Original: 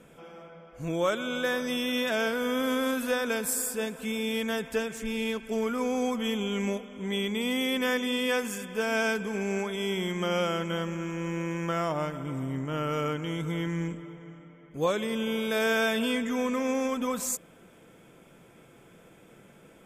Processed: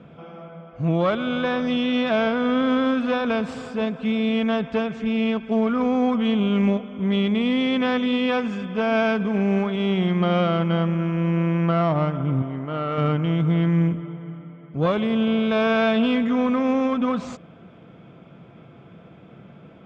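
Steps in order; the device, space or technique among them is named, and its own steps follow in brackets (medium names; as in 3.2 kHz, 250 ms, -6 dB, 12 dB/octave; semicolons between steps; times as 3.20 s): 10.07–11.81 s: low-pass 6.2 kHz 24 dB/octave; 12.42–12.98 s: tone controls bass -13 dB, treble -6 dB; guitar amplifier (valve stage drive 22 dB, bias 0.55; tone controls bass +13 dB, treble +3 dB; cabinet simulation 100–3800 Hz, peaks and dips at 680 Hz +7 dB, 1.2 kHz +6 dB, 1.8 kHz -3 dB); trim +5 dB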